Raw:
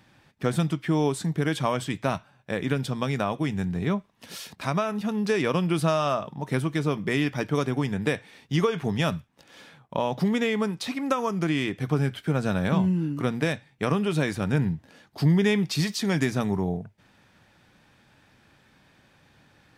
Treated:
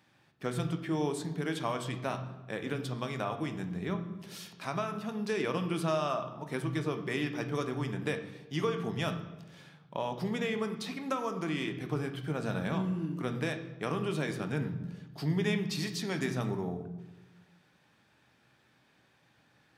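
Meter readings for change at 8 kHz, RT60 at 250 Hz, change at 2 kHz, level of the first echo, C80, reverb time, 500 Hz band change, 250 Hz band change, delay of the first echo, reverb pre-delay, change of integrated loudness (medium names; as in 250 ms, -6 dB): -7.5 dB, 1.5 s, -7.0 dB, no echo, 12.0 dB, 1.1 s, -7.0 dB, -8.5 dB, no echo, 3 ms, -8.0 dB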